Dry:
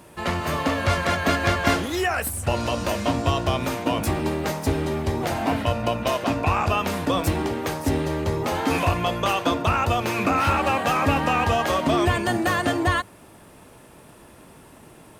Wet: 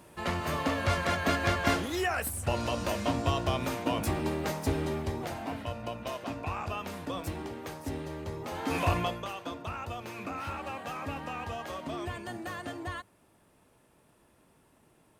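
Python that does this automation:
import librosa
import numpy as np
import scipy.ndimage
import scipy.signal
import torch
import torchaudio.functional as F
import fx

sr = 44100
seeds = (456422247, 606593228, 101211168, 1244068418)

y = fx.gain(x, sr, db=fx.line((4.9, -6.5), (5.47, -13.5), (8.47, -13.5), (8.97, -4.0), (9.29, -16.5)))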